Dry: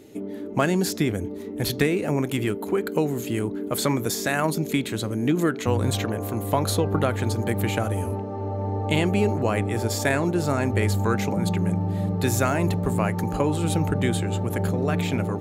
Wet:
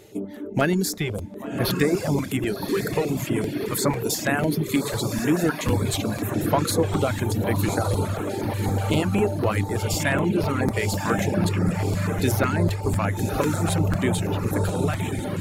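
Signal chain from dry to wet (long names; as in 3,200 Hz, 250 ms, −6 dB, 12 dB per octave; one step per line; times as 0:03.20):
fade-out on the ending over 0.58 s
on a send: feedback delay with all-pass diffusion 1,124 ms, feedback 53%, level −4.5 dB
on the sum: comb and all-pass reverb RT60 1.2 s, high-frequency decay 0.95×, pre-delay 50 ms, DRR 20 dB
in parallel at −5.5 dB: soft clipping −23 dBFS, distortion −9 dB
on the sum: reverb reduction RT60 1 s
regular buffer underruns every 0.25 s, samples 256, repeat, from 0:00.93
notch on a step sequencer 8.2 Hz 260–7,500 Hz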